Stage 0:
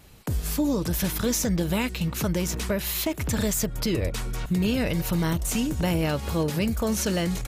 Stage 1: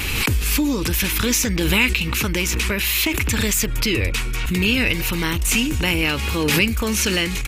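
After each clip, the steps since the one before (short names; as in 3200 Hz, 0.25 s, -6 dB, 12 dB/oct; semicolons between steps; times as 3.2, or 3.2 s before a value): fifteen-band EQ 160 Hz -10 dB, 630 Hz -12 dB, 2500 Hz +11 dB; backwards sustainer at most 22 dB/s; gain +6.5 dB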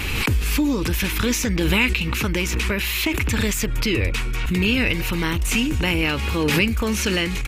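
high shelf 4100 Hz -7.5 dB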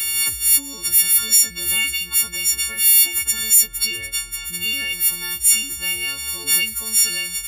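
frequency quantiser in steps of 4 st; pre-emphasis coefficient 0.9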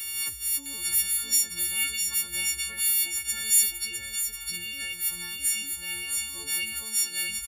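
echo 0.658 s -5 dB; noise-modulated level, depth 60%; gain -7.5 dB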